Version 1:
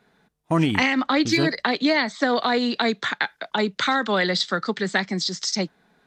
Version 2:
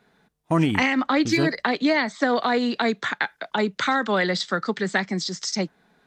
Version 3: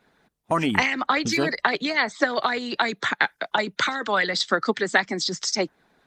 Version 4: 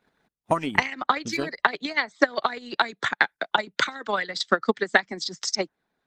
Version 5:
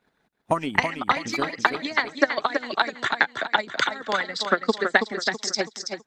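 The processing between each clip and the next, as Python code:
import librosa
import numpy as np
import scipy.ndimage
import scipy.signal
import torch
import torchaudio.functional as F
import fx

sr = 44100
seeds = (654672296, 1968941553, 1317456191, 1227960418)

y1 = fx.dynamic_eq(x, sr, hz=4000.0, q=1.5, threshold_db=-40.0, ratio=4.0, max_db=-5)
y2 = fx.hpss(y1, sr, part='harmonic', gain_db=-13)
y2 = y2 * 10.0 ** (4.0 / 20.0)
y3 = fx.transient(y2, sr, attack_db=10, sustain_db=-7)
y3 = y3 * 10.0 ** (-7.5 / 20.0)
y4 = fx.echo_feedback(y3, sr, ms=327, feedback_pct=38, wet_db=-6.5)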